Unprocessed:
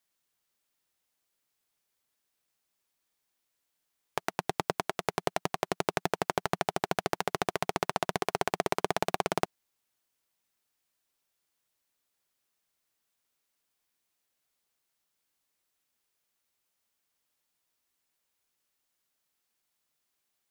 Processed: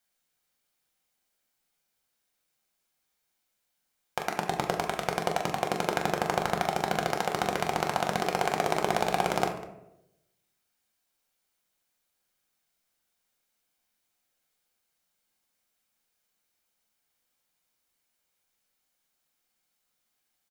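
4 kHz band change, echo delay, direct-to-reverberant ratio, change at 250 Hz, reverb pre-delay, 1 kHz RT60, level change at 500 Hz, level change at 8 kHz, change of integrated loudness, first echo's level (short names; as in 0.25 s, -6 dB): +2.5 dB, 42 ms, 1.5 dB, +3.0 dB, 4 ms, 0.75 s, +3.0 dB, +2.0 dB, +3.0 dB, -8.0 dB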